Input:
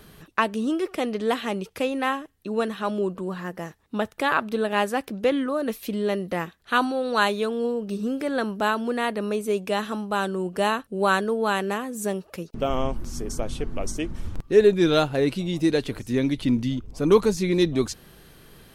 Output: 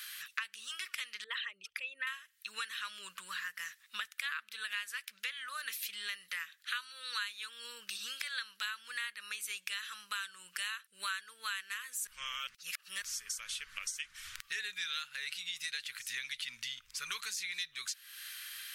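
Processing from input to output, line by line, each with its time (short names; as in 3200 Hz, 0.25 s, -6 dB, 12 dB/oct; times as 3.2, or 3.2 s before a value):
1.24–2.07 formant sharpening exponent 2
7.95–8.66 bell 3900 Hz +6.5 dB
12.07–13.02 reverse
whole clip: inverse Chebyshev high-pass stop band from 800 Hz, stop band 40 dB; compressor 5:1, threshold -48 dBFS; gain +10 dB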